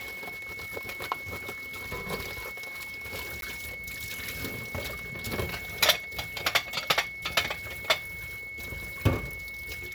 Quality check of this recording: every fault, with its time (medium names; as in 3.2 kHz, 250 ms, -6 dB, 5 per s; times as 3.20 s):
whine 2.2 kHz -37 dBFS
3.41–3.42 s: dropout 12 ms